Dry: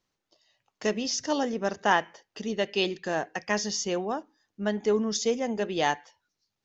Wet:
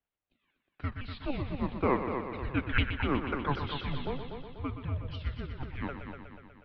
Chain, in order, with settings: repeated pitch sweeps -8 st, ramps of 0.256 s; Doppler pass-by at 2.92, 6 m/s, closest 6.5 m; on a send: multi-head echo 0.122 s, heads first and second, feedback 57%, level -9.5 dB; on the sum: mistuned SSB -270 Hz 180–3400 Hz

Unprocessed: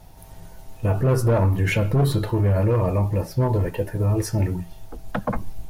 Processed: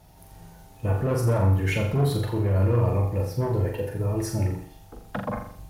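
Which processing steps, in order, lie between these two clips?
HPF 42 Hz; flutter echo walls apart 7.2 m, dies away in 0.56 s; gain -5 dB

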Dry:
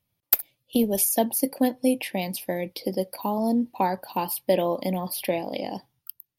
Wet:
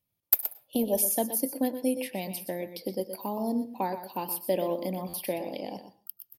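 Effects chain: echo 0.122 s -10.5 dB; reverse; upward compressor, threshold -41 dBFS; reverse; bell 380 Hz +3.5 dB 1.9 oct; on a send at -18 dB: reverb RT60 0.35 s, pre-delay 98 ms; on the sum: spectral gain 0.41–1.06, 550–1100 Hz +8 dB; high shelf 7800 Hz +7.5 dB; stuck buffer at 5.08, samples 512, times 4; gain -8.5 dB

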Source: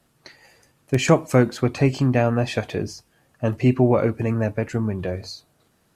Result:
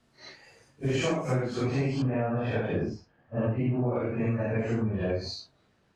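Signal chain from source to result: phase scrambler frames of 0.2 s; LPF 6600 Hz 12 dB/oct, from 2.02 s 2000 Hz, from 3.96 s 4400 Hz; spectral noise reduction 6 dB; compressor 10:1, threshold -28 dBFS, peak gain reduction 18 dB; gain +3.5 dB

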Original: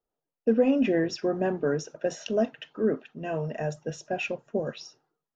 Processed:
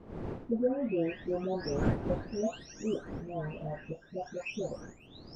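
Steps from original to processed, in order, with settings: spectral delay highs late, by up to 0.799 s; wind noise 340 Hz -35 dBFS; gain -5.5 dB

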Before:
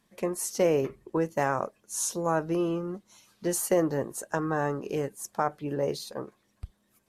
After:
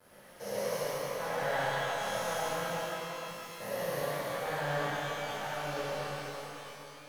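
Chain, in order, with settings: stepped spectrum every 0.4 s; low shelf 250 Hz -9.5 dB; fixed phaser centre 1700 Hz, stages 8; crossover distortion -47 dBFS; on a send: delay with a stepping band-pass 0.112 s, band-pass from 2600 Hz, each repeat -0.7 oct, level 0 dB; on the sum: shimmer reverb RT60 3.1 s, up +12 st, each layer -8 dB, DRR -12 dB; gain -5.5 dB

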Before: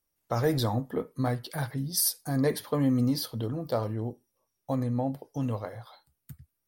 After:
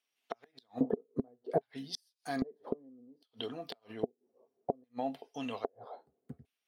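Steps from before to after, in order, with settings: LFO band-pass square 0.62 Hz 460–2900 Hz; flipped gate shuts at -35 dBFS, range -42 dB; small resonant body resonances 250/410/680 Hz, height 12 dB, ringing for 35 ms; gain +10 dB

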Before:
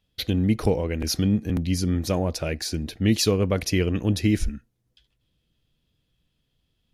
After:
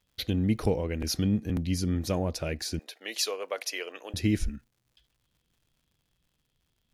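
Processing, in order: crackle 140/s -54 dBFS; 2.79–4.14 HPF 530 Hz 24 dB/oct; gain -4.5 dB

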